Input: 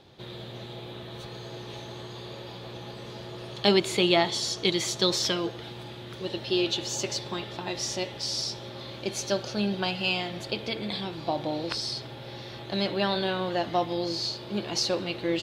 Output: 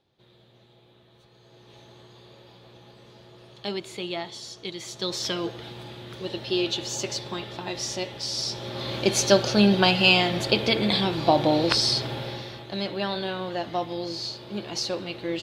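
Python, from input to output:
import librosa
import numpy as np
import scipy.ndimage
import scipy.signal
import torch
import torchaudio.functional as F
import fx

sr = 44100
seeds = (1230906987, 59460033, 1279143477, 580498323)

y = fx.gain(x, sr, db=fx.line((1.31, -17.0), (1.81, -10.0), (4.76, -10.0), (5.43, 0.5), (8.33, 0.5), (8.95, 9.5), (12.18, 9.5), (12.68, -2.0)))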